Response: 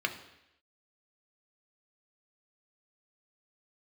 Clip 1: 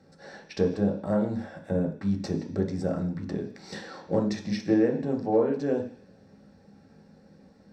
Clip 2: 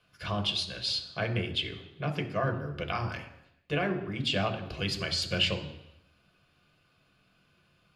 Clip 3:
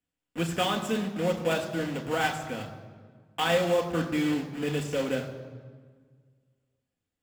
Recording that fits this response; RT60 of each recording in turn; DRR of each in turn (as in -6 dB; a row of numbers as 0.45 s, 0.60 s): 2; no single decay rate, 0.85 s, 1.6 s; 0.5 dB, 4.5 dB, 3.0 dB